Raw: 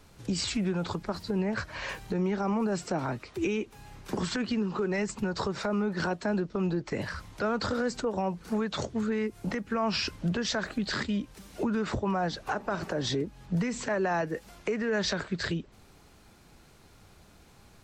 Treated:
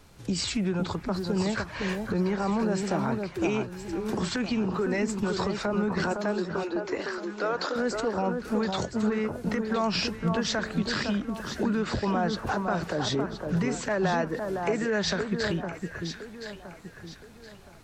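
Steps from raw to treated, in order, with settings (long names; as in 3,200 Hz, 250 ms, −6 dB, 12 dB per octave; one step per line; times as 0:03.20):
0:06.12–0:07.76: linear-phase brick-wall band-pass 260–7,400 Hz
on a send: delay that swaps between a low-pass and a high-pass 509 ms, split 1,500 Hz, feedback 58%, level −4.5 dB
on the sum: level +1.5 dB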